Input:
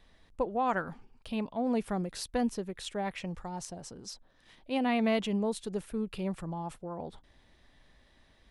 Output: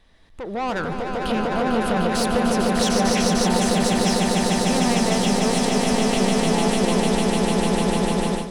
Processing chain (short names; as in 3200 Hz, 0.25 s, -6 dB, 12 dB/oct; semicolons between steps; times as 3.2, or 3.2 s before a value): in parallel at +2.5 dB: compressor, threshold -42 dBFS, peak gain reduction 17 dB; on the sum: soft clip -30.5 dBFS, distortion -8 dB; limiter -34 dBFS, peak gain reduction 3.5 dB; on a send: swelling echo 0.15 s, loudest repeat 8, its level -4.5 dB; on the sum: AGC gain up to 16.5 dB; 2.82–3.47 bell 5800 Hz +9.5 dB 0.34 oct; gain -4 dB; Vorbis 192 kbps 48000 Hz